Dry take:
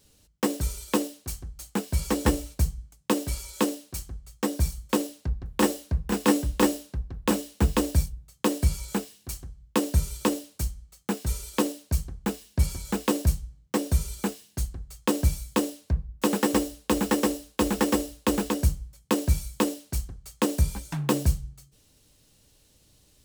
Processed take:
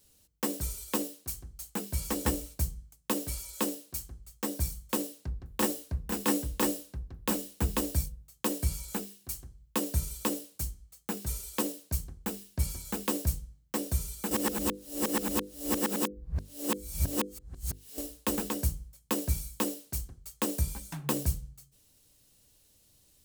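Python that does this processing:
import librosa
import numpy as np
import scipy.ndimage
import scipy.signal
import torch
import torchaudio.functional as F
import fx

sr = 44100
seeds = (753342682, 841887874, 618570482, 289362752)

y = fx.edit(x, sr, fx.reverse_span(start_s=14.31, length_s=3.67), tone=tone)
y = fx.high_shelf(y, sr, hz=9400.0, db=11.5)
y = fx.hum_notches(y, sr, base_hz=50, count=10)
y = F.gain(torch.from_numpy(y), -6.5).numpy()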